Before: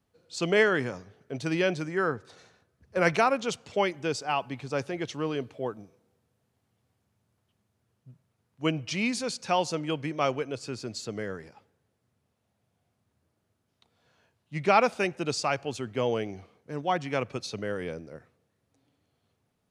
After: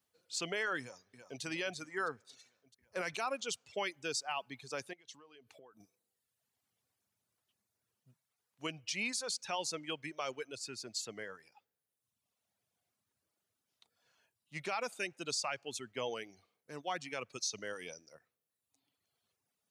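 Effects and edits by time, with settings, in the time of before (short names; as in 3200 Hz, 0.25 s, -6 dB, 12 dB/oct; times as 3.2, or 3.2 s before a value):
0.8–1.42 echo throw 0.33 s, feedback 65%, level -10 dB
4.93–5.8 compressor 10:1, threshold -43 dBFS
17.38–18.15 bell 6000 Hz +15 dB 0.68 oct
whole clip: reverb removal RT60 1.1 s; tilt +3 dB/oct; limiter -19 dBFS; gain -7 dB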